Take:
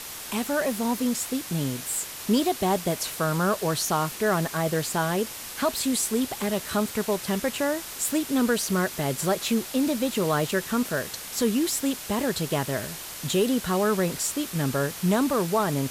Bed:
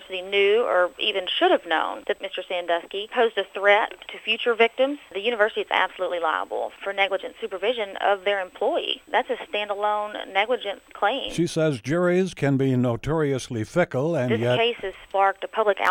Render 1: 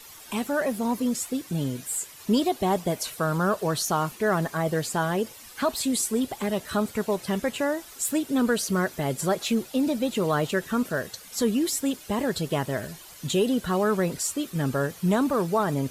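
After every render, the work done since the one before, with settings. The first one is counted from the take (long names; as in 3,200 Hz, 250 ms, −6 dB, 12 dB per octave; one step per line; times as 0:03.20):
broadband denoise 12 dB, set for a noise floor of −38 dBFS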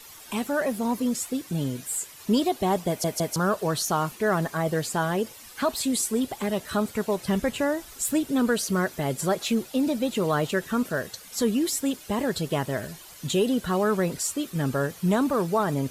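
0:02.88: stutter in place 0.16 s, 3 plays
0:07.24–0:08.31: low-shelf EQ 120 Hz +11.5 dB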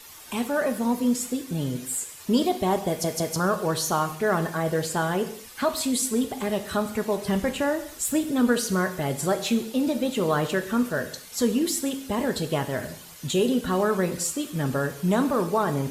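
reverb whose tail is shaped and stops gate 250 ms falling, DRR 7.5 dB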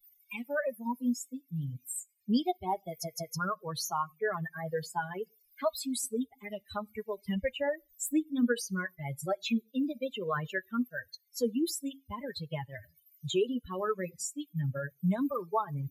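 spectral dynamics exaggerated over time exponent 3
multiband upward and downward compressor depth 40%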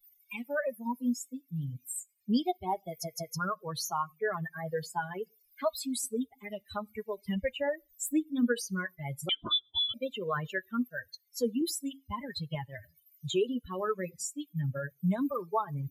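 0:09.29–0:09.94: voice inversion scrambler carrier 3,700 Hz
0:11.61–0:12.55: comb filter 1 ms, depth 53%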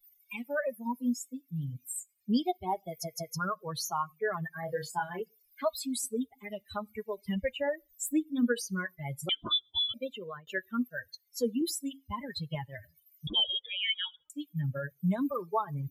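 0:04.60–0:05.22: double-tracking delay 28 ms −5 dB
0:09.76–0:10.47: fade out equal-power
0:13.27–0:14.30: voice inversion scrambler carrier 3,500 Hz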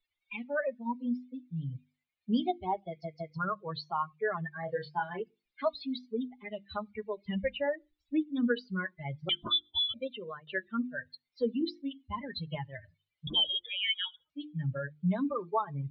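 Butterworth low-pass 4,300 Hz 72 dB per octave
mains-hum notches 50/100/150/200/250/300/350 Hz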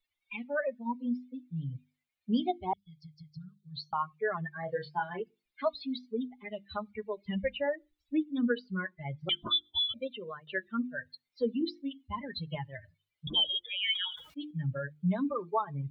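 0:02.73–0:03.93: Chebyshev band-stop filter 140–3,900 Hz, order 3
0:08.42–0:09.21: high-frequency loss of the air 130 metres
0:13.66–0:14.51: level that may fall only so fast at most 100 dB per second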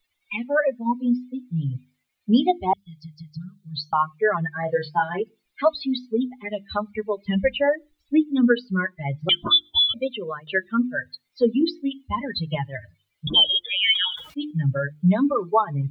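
level +11 dB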